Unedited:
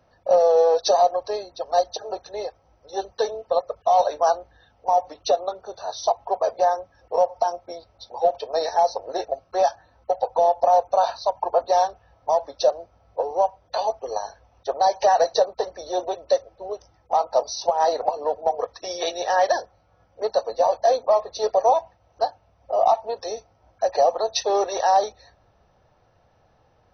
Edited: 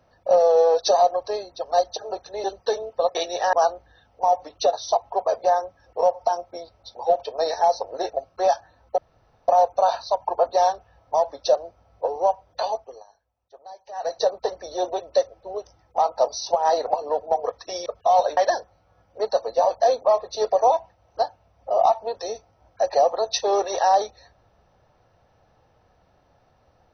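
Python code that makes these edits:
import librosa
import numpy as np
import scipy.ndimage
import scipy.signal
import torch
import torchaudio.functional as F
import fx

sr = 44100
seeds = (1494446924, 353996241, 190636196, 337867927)

y = fx.edit(x, sr, fx.cut(start_s=2.44, length_s=0.52),
    fx.swap(start_s=3.67, length_s=0.51, other_s=19.01, other_length_s=0.38),
    fx.cut(start_s=5.38, length_s=0.5),
    fx.room_tone_fill(start_s=10.13, length_s=0.5),
    fx.fade_down_up(start_s=13.75, length_s=1.75, db=-22.5, fade_s=0.43), tone=tone)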